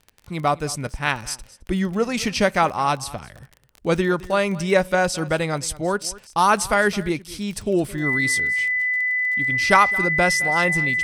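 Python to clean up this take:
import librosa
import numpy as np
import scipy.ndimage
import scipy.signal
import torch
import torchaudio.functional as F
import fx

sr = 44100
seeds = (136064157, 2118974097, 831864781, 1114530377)

y = fx.fix_declip(x, sr, threshold_db=-3.0)
y = fx.fix_declick_ar(y, sr, threshold=6.5)
y = fx.notch(y, sr, hz=2000.0, q=30.0)
y = fx.fix_echo_inverse(y, sr, delay_ms=215, level_db=-19.5)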